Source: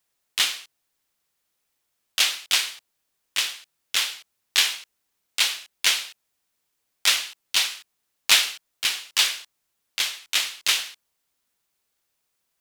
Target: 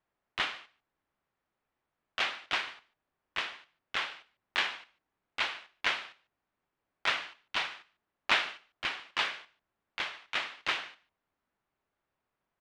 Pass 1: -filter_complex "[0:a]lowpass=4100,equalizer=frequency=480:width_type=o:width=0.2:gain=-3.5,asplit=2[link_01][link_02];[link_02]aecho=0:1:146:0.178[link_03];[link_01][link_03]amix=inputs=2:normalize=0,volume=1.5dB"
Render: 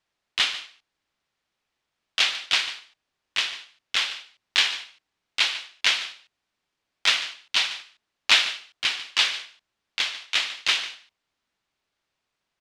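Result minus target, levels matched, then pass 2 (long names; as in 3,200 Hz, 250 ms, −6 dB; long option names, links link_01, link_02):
echo-to-direct +8 dB; 2,000 Hz band −3.0 dB
-filter_complex "[0:a]lowpass=1500,equalizer=frequency=480:width_type=o:width=0.2:gain=-3.5,asplit=2[link_01][link_02];[link_02]aecho=0:1:146:0.0708[link_03];[link_01][link_03]amix=inputs=2:normalize=0,volume=1.5dB"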